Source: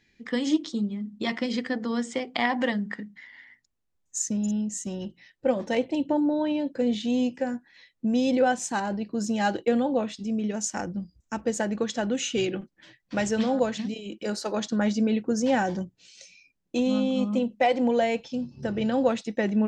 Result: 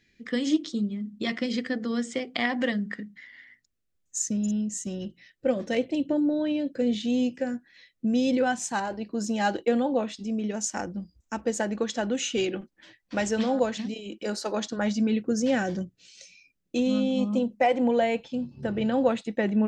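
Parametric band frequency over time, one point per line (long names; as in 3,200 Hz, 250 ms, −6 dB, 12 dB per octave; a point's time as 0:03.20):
parametric band −12 dB 0.43 octaves
0:08.30 900 Hz
0:09.08 140 Hz
0:14.63 140 Hz
0:15.21 890 Hz
0:16.99 890 Hz
0:17.84 5,600 Hz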